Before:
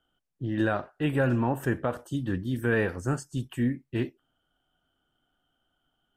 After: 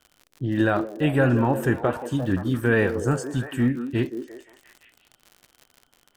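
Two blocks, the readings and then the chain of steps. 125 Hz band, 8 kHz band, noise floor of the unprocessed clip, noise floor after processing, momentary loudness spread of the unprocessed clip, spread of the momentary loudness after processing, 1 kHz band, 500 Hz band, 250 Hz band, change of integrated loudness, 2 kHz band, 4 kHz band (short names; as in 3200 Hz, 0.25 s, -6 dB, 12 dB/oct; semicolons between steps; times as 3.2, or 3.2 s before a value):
+5.0 dB, +5.5 dB, -78 dBFS, -66 dBFS, 7 LU, 8 LU, +5.5 dB, +6.0 dB, +5.5 dB, +5.5 dB, +5.0 dB, +5.0 dB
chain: crackle 80/s -41 dBFS; delay with a stepping band-pass 0.174 s, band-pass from 350 Hz, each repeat 0.7 oct, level -6 dB; gain +5 dB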